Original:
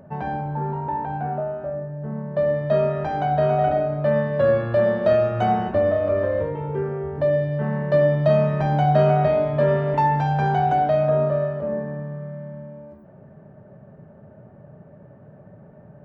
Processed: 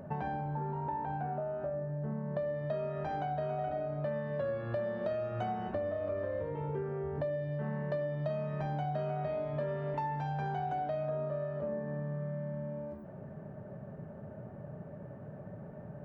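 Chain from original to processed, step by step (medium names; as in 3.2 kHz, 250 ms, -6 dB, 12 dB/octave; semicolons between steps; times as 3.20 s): compression 6:1, threshold -34 dBFS, peak gain reduction 19.5 dB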